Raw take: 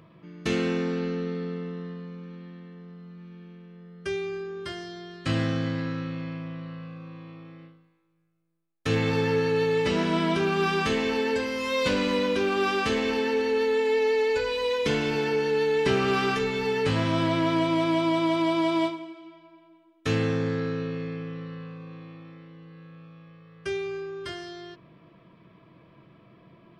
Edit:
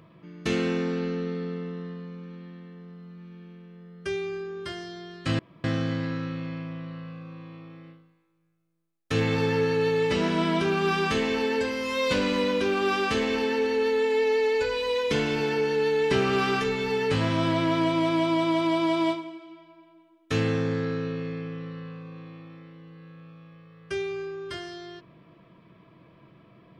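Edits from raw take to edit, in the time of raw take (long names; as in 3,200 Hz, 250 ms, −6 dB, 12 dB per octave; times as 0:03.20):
0:05.39: splice in room tone 0.25 s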